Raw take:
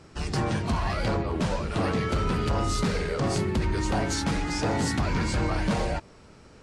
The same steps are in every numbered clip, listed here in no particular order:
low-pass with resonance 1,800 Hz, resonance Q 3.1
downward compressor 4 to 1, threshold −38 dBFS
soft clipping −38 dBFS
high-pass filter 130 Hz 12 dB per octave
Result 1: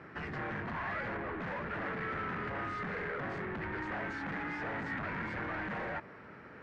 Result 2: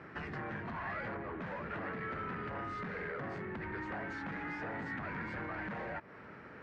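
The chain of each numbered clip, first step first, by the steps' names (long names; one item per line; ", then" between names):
high-pass filter, then soft clipping, then downward compressor, then low-pass with resonance
high-pass filter, then downward compressor, then soft clipping, then low-pass with resonance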